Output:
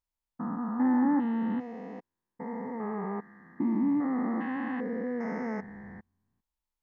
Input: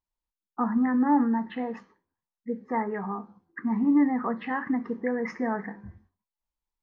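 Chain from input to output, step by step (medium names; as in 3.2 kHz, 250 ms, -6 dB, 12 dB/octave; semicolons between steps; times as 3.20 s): spectrogram pixelated in time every 400 ms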